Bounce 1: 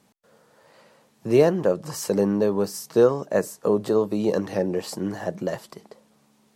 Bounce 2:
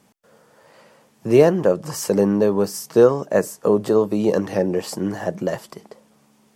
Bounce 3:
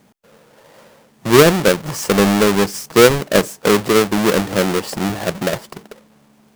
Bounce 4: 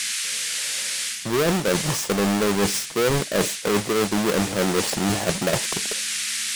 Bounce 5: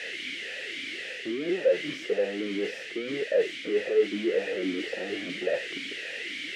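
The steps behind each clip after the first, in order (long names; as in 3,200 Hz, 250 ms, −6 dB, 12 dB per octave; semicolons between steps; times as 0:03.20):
parametric band 4,000 Hz −5.5 dB 0.2 octaves; level +4 dB
each half-wave held at its own peak
leveller curve on the samples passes 1; noise in a band 1,600–10,000 Hz −27 dBFS; reversed playback; downward compressor 10 to 1, threshold −19 dBFS, peak gain reduction 15 dB; reversed playback
mid-hump overdrive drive 28 dB, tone 2,100 Hz, clips at −9.5 dBFS; formant filter swept between two vowels e-i 1.8 Hz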